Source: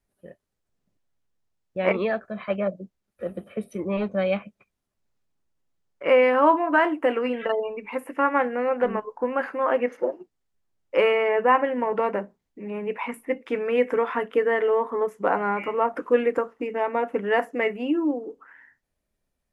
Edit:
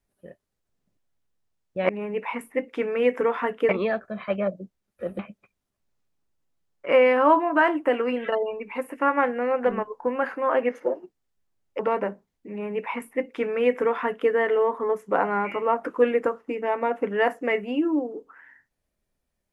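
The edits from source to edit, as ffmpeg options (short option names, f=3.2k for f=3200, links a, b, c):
-filter_complex "[0:a]asplit=5[a][b][c][d][e];[a]atrim=end=1.892[f];[b]atrim=start=12.618:end=14.422[g];[c]atrim=start=1.888:end=3.392[h];[d]atrim=start=4.358:end=10.962[i];[e]atrim=start=11.908[j];[f][g]acrossfade=d=0.004:c1=hsin:c2=hsin[k];[k][h]acrossfade=d=0.004:c1=hsin:c2=hsin[l];[l][i]acrossfade=d=0.004:c1=hsin:c2=hsin[m];[m][j]acrossfade=d=0.004:c1=hsin:c2=hsin"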